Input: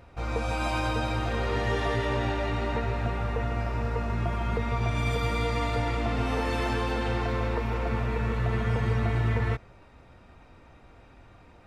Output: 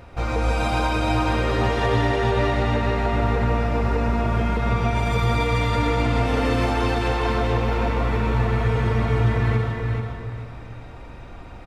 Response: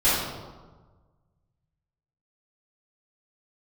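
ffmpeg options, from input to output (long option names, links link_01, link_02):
-filter_complex "[0:a]alimiter=limit=-23dB:level=0:latency=1:release=331,aecho=1:1:434|868|1302|1736:0.531|0.143|0.0387|0.0104,asplit=2[link_01][link_02];[1:a]atrim=start_sample=2205,adelay=104[link_03];[link_02][link_03]afir=irnorm=-1:irlink=0,volume=-19dB[link_04];[link_01][link_04]amix=inputs=2:normalize=0,volume=8dB"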